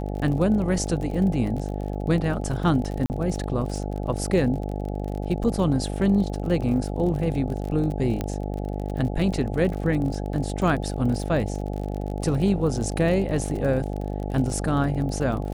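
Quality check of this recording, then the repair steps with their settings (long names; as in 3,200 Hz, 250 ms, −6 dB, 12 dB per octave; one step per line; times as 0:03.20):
mains buzz 50 Hz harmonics 17 −29 dBFS
surface crackle 42 per second −31 dBFS
0:03.06–0:03.10: drop-out 39 ms
0:08.21: click −14 dBFS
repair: click removal
hum removal 50 Hz, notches 17
repair the gap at 0:03.06, 39 ms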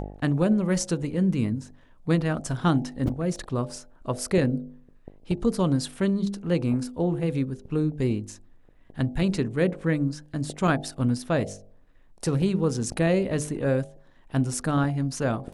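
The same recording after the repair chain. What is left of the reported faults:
none of them is left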